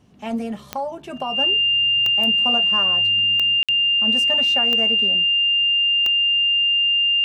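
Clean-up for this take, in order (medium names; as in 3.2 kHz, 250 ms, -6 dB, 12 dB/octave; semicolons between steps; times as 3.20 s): de-click; band-stop 2.8 kHz, Q 30; interpolate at 3.63 s, 56 ms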